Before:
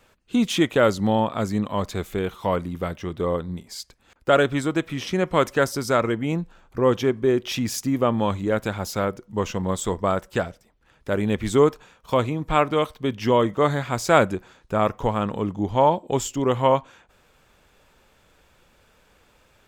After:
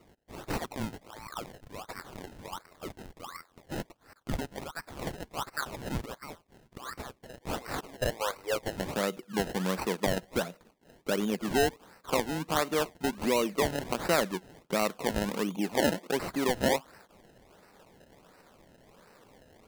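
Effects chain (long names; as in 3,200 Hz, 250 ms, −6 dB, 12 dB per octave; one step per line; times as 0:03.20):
downward compressor 2 to 1, threshold −35 dBFS, peak gain reduction 13 dB
Chebyshev high-pass filter 1,200 Hz, order 4, from 0:07.41 460 Hz, from 0:08.74 170 Hz
sample-and-hold swept by an LFO 26×, swing 100% 1.4 Hz
level +3 dB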